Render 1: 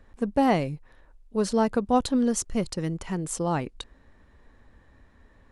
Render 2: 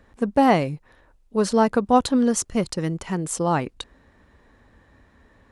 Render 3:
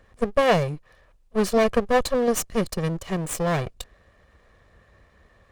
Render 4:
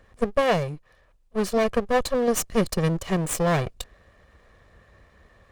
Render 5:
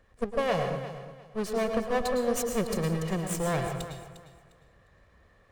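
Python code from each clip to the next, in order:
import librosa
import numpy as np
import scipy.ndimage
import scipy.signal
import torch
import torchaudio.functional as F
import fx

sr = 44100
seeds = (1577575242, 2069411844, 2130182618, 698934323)

y1 = fx.highpass(x, sr, hz=70.0, slope=6)
y1 = fx.dynamic_eq(y1, sr, hz=1200.0, q=0.91, threshold_db=-39.0, ratio=4.0, max_db=3)
y1 = y1 * 10.0 ** (4.0 / 20.0)
y2 = fx.lower_of_two(y1, sr, delay_ms=1.7)
y3 = fx.rider(y2, sr, range_db=3, speed_s=0.5)
y4 = fx.echo_feedback(y3, sr, ms=353, feedback_pct=24, wet_db=-13.5)
y4 = fx.rev_plate(y4, sr, seeds[0], rt60_s=0.74, hf_ratio=0.65, predelay_ms=95, drr_db=4.5)
y4 = y4 * 10.0 ** (-7.0 / 20.0)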